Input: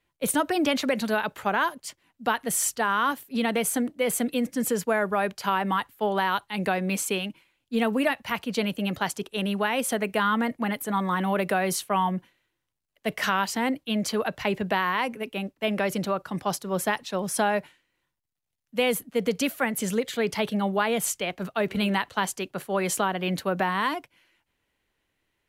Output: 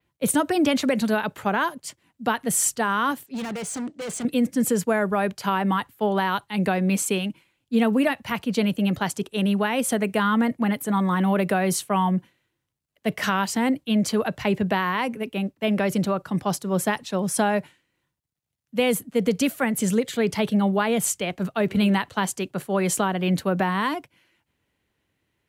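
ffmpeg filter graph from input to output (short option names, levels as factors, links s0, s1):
-filter_complex "[0:a]asettb=1/sr,asplit=3[s0][s1][s2];[s0]atrim=end=3.264[s3];[s1]atrim=start=3.26:end=4.25,asetpts=PTS-STARTPTS,afade=t=in:d=0.004:c=qsin,afade=t=out:st=0.986:d=0.004:c=qsin,lowpass=f=7500:w=0.5412,lowpass=f=7500:w=1.3066,bass=f=250:g=-7,treble=f=4000:g=2,asoftclip=type=hard:threshold=0.0251[s4];[s2]atrim=start=4.246[s5];[s3][s4]acrossfade=d=0.004:c1=hsin:c2=qsin[s6];[s6][s5]acrossfade=d=0.004:c1=qsin:c2=hsin,adynamicequalizer=threshold=0.00708:dfrequency=8100:dqfactor=1.6:tfrequency=8100:tqfactor=1.6:attack=5:release=100:ratio=0.375:range=2.5:mode=boostabove:tftype=bell,highpass=83,lowshelf=f=260:g=10.5"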